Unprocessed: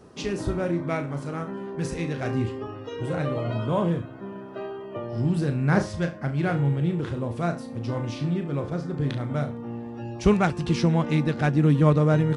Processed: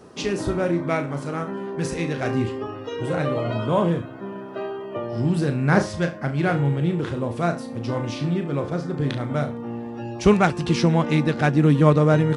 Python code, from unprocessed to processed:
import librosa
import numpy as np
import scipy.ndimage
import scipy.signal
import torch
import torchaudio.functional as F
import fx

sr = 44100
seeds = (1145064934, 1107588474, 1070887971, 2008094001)

y = fx.low_shelf(x, sr, hz=120.0, db=-8.5)
y = y * librosa.db_to_amplitude(5.0)